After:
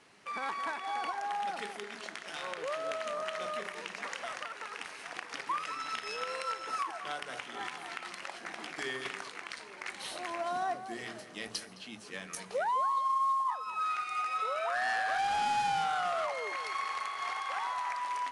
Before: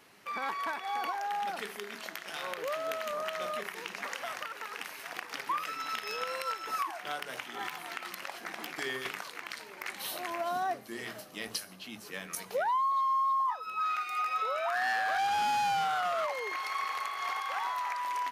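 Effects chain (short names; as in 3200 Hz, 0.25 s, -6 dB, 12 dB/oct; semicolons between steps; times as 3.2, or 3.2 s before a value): on a send: tape echo 0.212 s, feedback 23%, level -9.5 dB, low-pass 1700 Hz; on the sum: gain -1.5 dB; IMA ADPCM 88 kbps 22050 Hz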